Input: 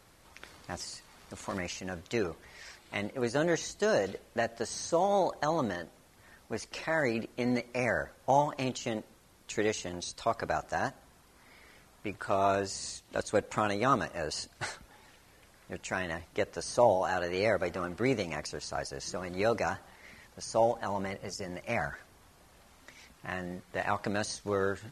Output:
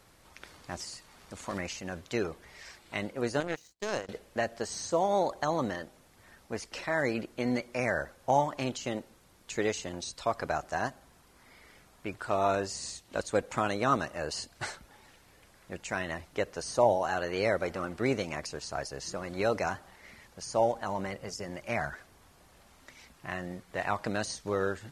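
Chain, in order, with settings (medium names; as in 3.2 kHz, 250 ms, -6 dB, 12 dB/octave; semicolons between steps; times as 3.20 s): 3.40–4.09 s: power-law waveshaper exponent 2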